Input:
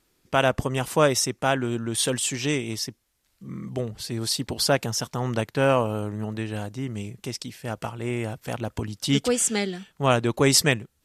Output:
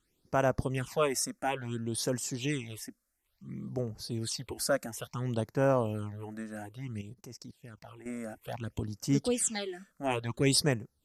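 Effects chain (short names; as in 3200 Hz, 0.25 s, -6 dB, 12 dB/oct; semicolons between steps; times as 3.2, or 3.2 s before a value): 7.01–8.06 level quantiser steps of 20 dB; phaser stages 8, 0.58 Hz, lowest notch 110–3500 Hz; gain -6 dB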